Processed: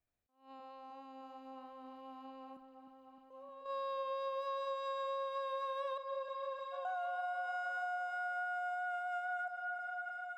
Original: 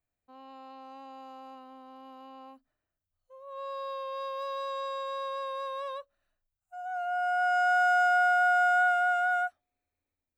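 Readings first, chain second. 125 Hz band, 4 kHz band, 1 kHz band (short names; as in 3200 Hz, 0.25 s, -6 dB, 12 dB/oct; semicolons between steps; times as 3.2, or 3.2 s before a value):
n/a, -9.0 dB, -11.0 dB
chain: high shelf 4900 Hz -5.5 dB; level quantiser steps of 19 dB; repeats that get brighter 0.307 s, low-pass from 750 Hz, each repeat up 1 oct, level -6 dB; compressor, threshold -41 dBFS, peak gain reduction 9 dB; attack slew limiter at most 160 dB/s; gain +4.5 dB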